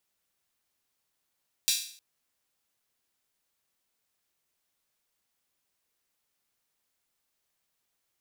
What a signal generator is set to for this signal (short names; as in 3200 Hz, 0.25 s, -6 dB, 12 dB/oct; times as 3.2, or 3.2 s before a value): open hi-hat length 0.31 s, high-pass 3700 Hz, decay 0.52 s